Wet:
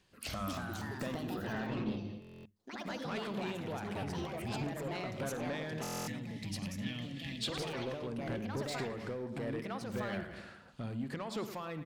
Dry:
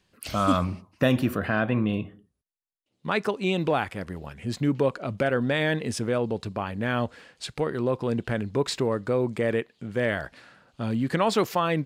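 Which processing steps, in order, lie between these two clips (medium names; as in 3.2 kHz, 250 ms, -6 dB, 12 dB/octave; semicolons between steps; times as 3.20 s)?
feedback delay 107 ms, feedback 41%, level -14.5 dB; compression 5:1, threshold -35 dBFS, peak gain reduction 16.5 dB; ever faster or slower copies 287 ms, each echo +3 st, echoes 3; 5.85–7.44 s: time-frequency box 310–1700 Hz -15 dB; saturation -30.5 dBFS, distortion -15 dB; 1.06–1.76 s: band-stop 2.2 kHz, Q 5.1; 6.84–8.07 s: peaking EQ 3.4 kHz +9 dB 0.68 oct; on a send at -16 dB: reverberation RT60 0.30 s, pre-delay 46 ms; on the sum: buffer glitch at 2.20/5.82 s, samples 1024, times 10; random flutter of the level, depth 50%; trim +1 dB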